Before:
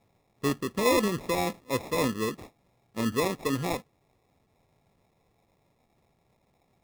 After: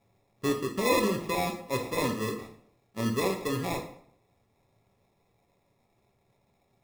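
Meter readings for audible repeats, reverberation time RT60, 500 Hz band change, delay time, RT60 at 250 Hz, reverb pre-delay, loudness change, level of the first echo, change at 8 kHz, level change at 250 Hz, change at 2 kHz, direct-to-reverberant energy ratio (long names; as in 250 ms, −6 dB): no echo audible, 0.60 s, −1.0 dB, no echo audible, 0.65 s, 3 ms, −1.0 dB, no echo audible, −1.5 dB, −1.5 dB, −0.5 dB, 2.5 dB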